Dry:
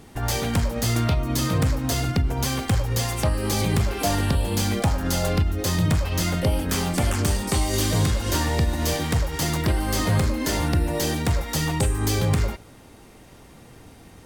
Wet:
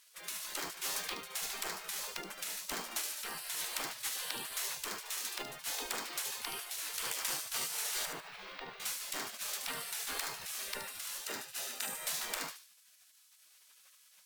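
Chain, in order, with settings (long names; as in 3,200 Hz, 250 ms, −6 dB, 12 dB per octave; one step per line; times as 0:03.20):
gate on every frequency bin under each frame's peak −25 dB weak
0:08.05–0:08.80: high-frequency loss of the air 340 metres
0:11.25–0:11.93: notch comb filter 1,100 Hz
delay with a high-pass on its return 74 ms, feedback 34%, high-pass 4,200 Hz, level −6 dB
bad sample-rate conversion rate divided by 2×, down none, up hold
level −4 dB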